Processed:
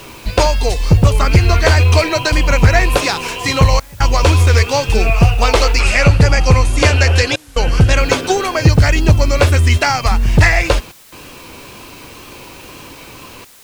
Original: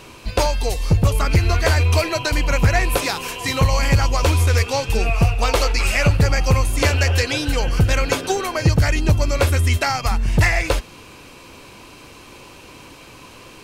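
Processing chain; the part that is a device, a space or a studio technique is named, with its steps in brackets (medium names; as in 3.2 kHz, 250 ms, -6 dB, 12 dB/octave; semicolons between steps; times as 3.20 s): worn cassette (low-pass 7.9 kHz 12 dB/octave; wow and flutter; level dips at 3.80/7.36/10.92/13.45 s, 200 ms -27 dB; white noise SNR 31 dB); 5.80–7.98 s: low-pass 12 kHz 24 dB/octave; trim +6 dB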